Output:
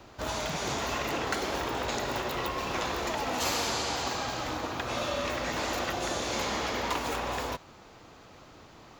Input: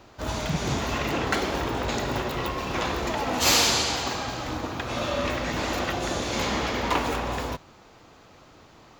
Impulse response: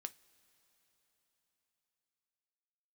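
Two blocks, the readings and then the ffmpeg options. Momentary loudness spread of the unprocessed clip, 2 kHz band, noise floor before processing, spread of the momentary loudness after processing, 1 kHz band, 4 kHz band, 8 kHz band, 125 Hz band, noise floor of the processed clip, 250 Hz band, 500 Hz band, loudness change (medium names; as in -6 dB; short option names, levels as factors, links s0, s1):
10 LU, -4.0 dB, -53 dBFS, 4 LU, -3.0 dB, -6.0 dB, -6.5 dB, -8.5 dB, -53 dBFS, -6.5 dB, -4.0 dB, -5.0 dB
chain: -filter_complex "[0:a]acrossover=split=370|1800|4400[s0][s1][s2][s3];[s0]acompressor=threshold=0.01:ratio=4[s4];[s1]acompressor=threshold=0.0282:ratio=4[s5];[s2]acompressor=threshold=0.01:ratio=4[s6];[s3]acompressor=threshold=0.0141:ratio=4[s7];[s4][s5][s6][s7]amix=inputs=4:normalize=0"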